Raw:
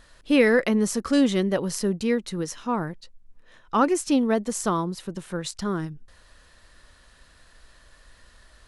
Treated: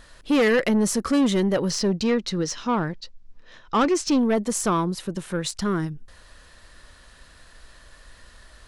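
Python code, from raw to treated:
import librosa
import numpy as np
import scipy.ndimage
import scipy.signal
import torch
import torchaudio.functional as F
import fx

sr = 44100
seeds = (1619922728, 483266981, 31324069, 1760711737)

y = fx.lowpass_res(x, sr, hz=5300.0, q=1.7, at=(1.7, 4.18))
y = 10.0 ** (-19.5 / 20.0) * np.tanh(y / 10.0 ** (-19.5 / 20.0))
y = y * 10.0 ** (4.5 / 20.0)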